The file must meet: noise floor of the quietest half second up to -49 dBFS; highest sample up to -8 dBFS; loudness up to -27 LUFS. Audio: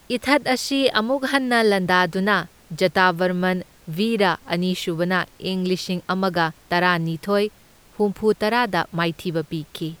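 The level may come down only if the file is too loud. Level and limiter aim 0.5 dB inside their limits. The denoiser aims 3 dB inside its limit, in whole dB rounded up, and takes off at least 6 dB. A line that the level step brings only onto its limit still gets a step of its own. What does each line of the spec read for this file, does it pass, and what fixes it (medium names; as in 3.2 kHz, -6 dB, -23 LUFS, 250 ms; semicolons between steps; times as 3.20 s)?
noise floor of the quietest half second -51 dBFS: pass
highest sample -4.0 dBFS: fail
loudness -21.5 LUFS: fail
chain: trim -6 dB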